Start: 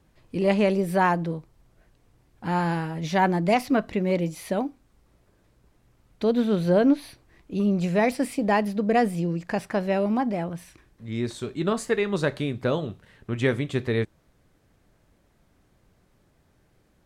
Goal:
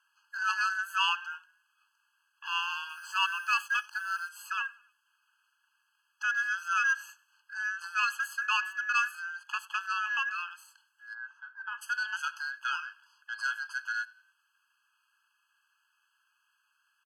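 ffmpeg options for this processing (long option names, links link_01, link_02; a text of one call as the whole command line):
ffmpeg -i in.wav -filter_complex "[0:a]asplit=2[link_01][link_02];[link_02]asplit=3[link_03][link_04][link_05];[link_03]adelay=95,afreqshift=-34,volume=-23dB[link_06];[link_04]adelay=190,afreqshift=-68,volume=-29.4dB[link_07];[link_05]adelay=285,afreqshift=-102,volume=-35.8dB[link_08];[link_06][link_07][link_08]amix=inputs=3:normalize=0[link_09];[link_01][link_09]amix=inputs=2:normalize=0,aeval=exprs='val(0)*sin(2*PI*1900*n/s)':channel_layout=same,asettb=1/sr,asplit=3[link_10][link_11][link_12];[link_10]atrim=end=2.894[link_13];[link_11]atrim=start=2.89:end=4.29,asetpts=PTS-STARTPTS,afade=type=in:duration=0.004:curve=qsin,afade=type=out:start_time=1.396:duration=0.004:curve=qsin,aeval=exprs='sgn(val(0))*max(abs(val(0))-0.00447,0)':channel_layout=same[link_14];[link_12]atrim=start=4.286[link_15];[link_13][link_14]acrossfade=duration=0.004:curve1=hsin:curve2=qsin[link_16];[link_16][link_15]acrossfade=duration=0.004:curve1=qsin:curve2=hsin,asplit=3[link_17][link_18][link_19];[link_17]afade=type=out:start_time=11.13:duration=0.02[link_20];[link_18]lowpass=1100,afade=type=in:start_time=11.13:duration=0.02,afade=type=out:start_time=11.81:duration=0.02[link_21];[link_19]afade=type=in:start_time=11.81:duration=0.02[link_22];[link_20][link_21][link_22]amix=inputs=3:normalize=0,asoftclip=type=tanh:threshold=-15dB,asubboost=boost=10:cutoff=170,afftfilt=real='re*eq(mod(floor(b*sr/1024/840),2),1)':imag='im*eq(mod(floor(b*sr/1024/840),2),1)':win_size=1024:overlap=0.75" out.wav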